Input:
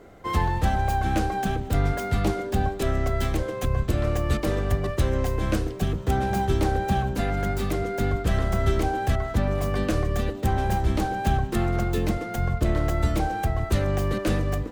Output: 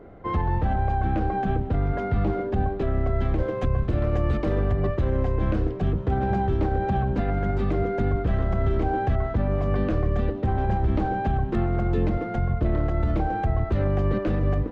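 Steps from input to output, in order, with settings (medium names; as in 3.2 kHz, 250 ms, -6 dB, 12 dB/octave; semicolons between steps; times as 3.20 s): peak limiter -18 dBFS, peak gain reduction 7.5 dB; tape spacing loss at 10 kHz 43 dB, from 3.38 s at 10 kHz 31 dB, from 4.52 s at 10 kHz 37 dB; trim +4.5 dB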